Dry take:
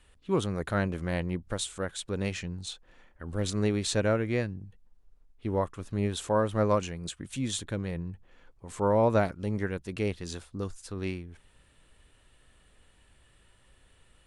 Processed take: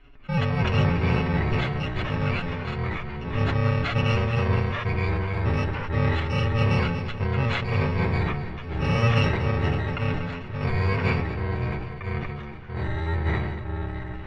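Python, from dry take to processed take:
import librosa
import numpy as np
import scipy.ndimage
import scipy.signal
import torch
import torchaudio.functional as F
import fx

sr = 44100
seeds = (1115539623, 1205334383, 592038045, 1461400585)

y = fx.bit_reversed(x, sr, seeds[0], block=128)
y = scipy.signal.sosfilt(scipy.signal.butter(4, 2800.0, 'lowpass', fs=sr, output='sos'), y)
y = y + 0.86 * np.pad(y, (int(7.1 * sr / 1000.0), 0))[:len(y)]
y = fx.echo_pitch(y, sr, ms=154, semitones=-3, count=2, db_per_echo=-3.0)
y = fx.echo_feedback(y, sr, ms=238, feedback_pct=54, wet_db=-14.5)
y = fx.sustainer(y, sr, db_per_s=34.0)
y = y * librosa.db_to_amplitude(7.0)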